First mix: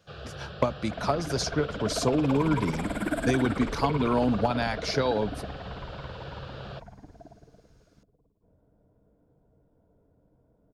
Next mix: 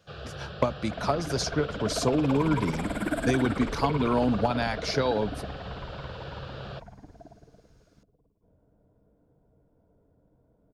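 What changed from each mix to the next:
first sound: send +11.5 dB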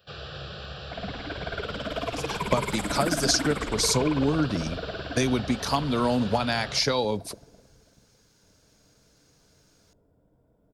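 speech: entry +1.90 s; master: add treble shelf 3 kHz +11.5 dB

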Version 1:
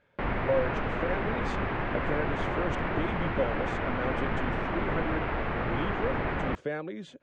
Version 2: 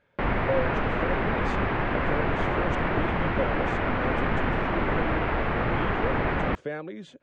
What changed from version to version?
background +4.5 dB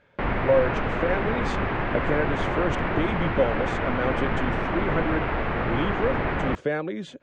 speech +7.0 dB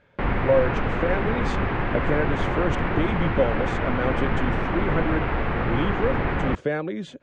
background: add band-stop 630 Hz, Q 17; master: add bass shelf 210 Hz +4 dB

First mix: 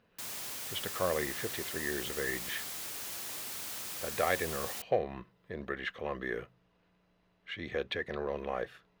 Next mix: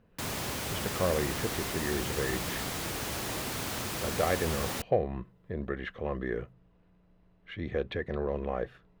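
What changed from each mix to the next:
background +11.5 dB; master: add tilt EQ -3 dB/octave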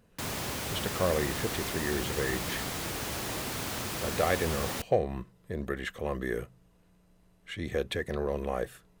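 speech: remove distance through air 280 m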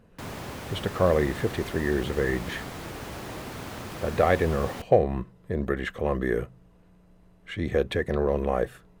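speech +7.0 dB; master: add treble shelf 2.9 kHz -11 dB

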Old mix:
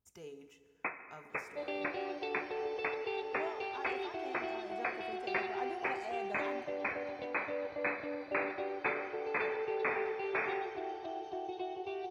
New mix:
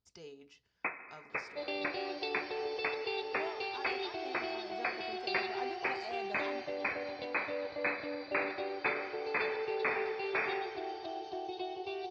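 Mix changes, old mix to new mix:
speech: send off; master: add resonant low-pass 4.7 kHz, resonance Q 5

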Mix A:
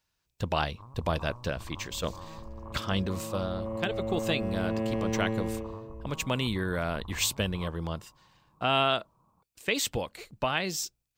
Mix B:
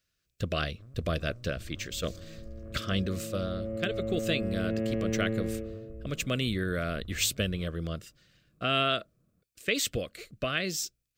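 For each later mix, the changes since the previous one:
first sound: remove resonant low-pass 1.1 kHz, resonance Q 6.7; second sound: add low-pass 2.3 kHz; master: add Butterworth band-stop 890 Hz, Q 1.7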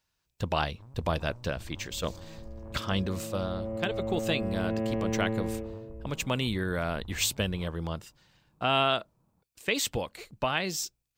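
master: remove Butterworth band-stop 890 Hz, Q 1.7

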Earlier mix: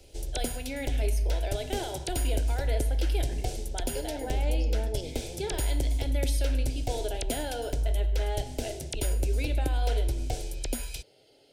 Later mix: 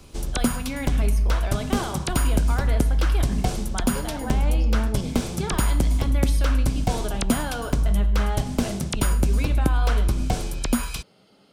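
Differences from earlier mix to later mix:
background +5.5 dB; master: remove static phaser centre 480 Hz, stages 4

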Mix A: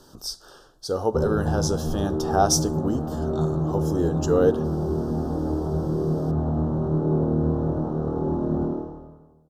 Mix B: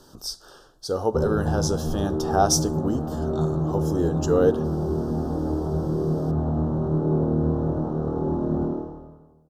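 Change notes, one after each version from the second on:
no change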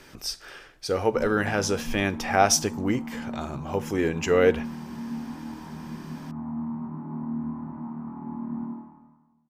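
background: add two resonant band-passes 470 Hz, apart 2.1 oct; master: remove Butterworth band-stop 2.2 kHz, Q 0.91

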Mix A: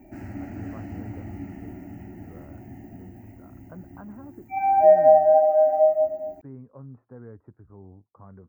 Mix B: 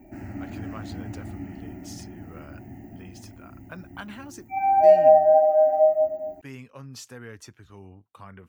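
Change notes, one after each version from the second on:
speech: remove Gaussian low-pass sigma 8.4 samples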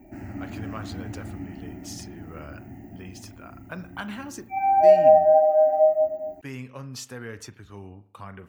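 speech +3.0 dB; reverb: on, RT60 0.65 s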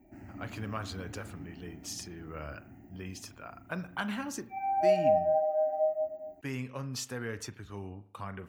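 background -10.5 dB

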